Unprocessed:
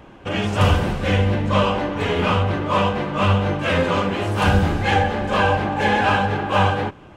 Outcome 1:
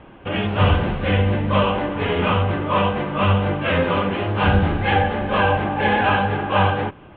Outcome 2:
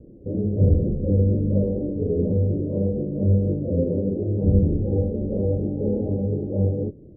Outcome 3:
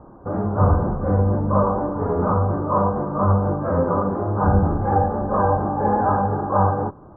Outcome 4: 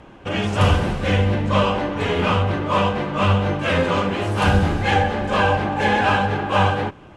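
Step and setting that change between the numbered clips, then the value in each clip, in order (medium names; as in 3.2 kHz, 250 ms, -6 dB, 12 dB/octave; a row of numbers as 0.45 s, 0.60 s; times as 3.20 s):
steep low-pass, frequency: 3.5 kHz, 510 Hz, 1.3 kHz, 12 kHz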